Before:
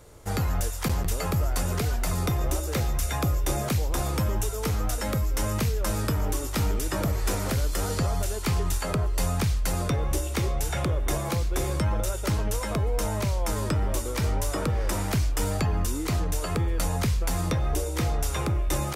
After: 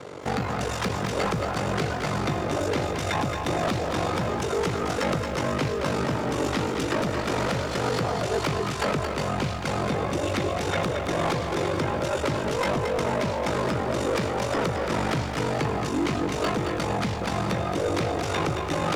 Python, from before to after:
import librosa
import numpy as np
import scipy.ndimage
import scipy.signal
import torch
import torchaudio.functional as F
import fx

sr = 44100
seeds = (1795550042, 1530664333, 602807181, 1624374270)

p1 = fx.over_compress(x, sr, threshold_db=-30.0, ratio=-0.5)
p2 = x + (p1 * librosa.db_to_amplitude(0.5))
p3 = p2 * np.sin(2.0 * np.pi * 24.0 * np.arange(len(p2)) / sr)
p4 = fx.bandpass_edges(p3, sr, low_hz=190.0, high_hz=3700.0)
p5 = 10.0 ** (-29.0 / 20.0) * np.tanh(p4 / 10.0 ** (-29.0 / 20.0))
p6 = fx.echo_crushed(p5, sr, ms=223, feedback_pct=35, bits=11, wet_db=-6)
y = p6 * librosa.db_to_amplitude(8.0)